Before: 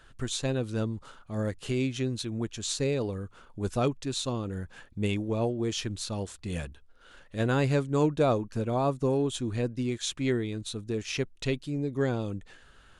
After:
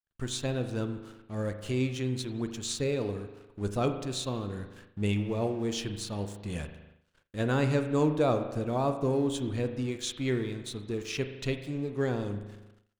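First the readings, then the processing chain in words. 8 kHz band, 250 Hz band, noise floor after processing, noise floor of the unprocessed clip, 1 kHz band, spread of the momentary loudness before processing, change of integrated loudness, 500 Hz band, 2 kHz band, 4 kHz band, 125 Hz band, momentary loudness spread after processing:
-2.5 dB, -1.0 dB, -66 dBFS, -56 dBFS, -1.0 dB, 10 LU, -1.0 dB, -1.0 dB, -1.0 dB, -2.0 dB, -1.5 dB, 11 LU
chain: crossover distortion -51.5 dBFS; spring tank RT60 1.2 s, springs 39 ms, chirp 60 ms, DRR 7.5 dB; expander -50 dBFS; trim -1.5 dB

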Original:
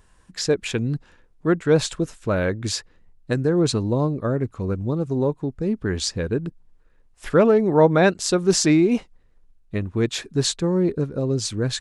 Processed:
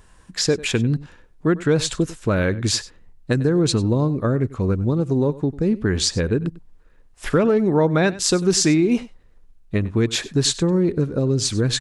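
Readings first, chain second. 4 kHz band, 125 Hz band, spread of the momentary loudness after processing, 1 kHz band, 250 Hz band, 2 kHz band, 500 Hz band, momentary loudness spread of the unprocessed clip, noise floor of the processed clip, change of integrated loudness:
+4.0 dB, +3.5 dB, 7 LU, -2.0 dB, +2.0 dB, +1.5 dB, -0.5 dB, 11 LU, -51 dBFS, +1.5 dB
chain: dynamic bell 710 Hz, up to -5 dB, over -29 dBFS, Q 0.88; compression 3:1, threshold -20 dBFS, peak gain reduction 6.5 dB; on a send: delay 96 ms -18.5 dB; on the sum: trim +5.5 dB

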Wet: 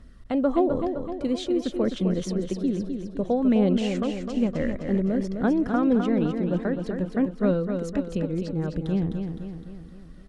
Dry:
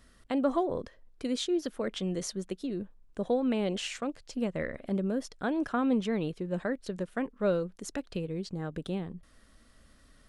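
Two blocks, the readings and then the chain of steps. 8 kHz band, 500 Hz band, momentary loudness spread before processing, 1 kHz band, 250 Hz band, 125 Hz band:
no reading, +5.5 dB, 9 LU, +4.0 dB, +8.5 dB, +9.5 dB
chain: treble shelf 8 kHz -11.5 dB; phaser 0.55 Hz, delay 4.1 ms, feedback 30%; bass shelf 400 Hz +10.5 dB; on a send: feedback delay 257 ms, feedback 52%, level -6.5 dB

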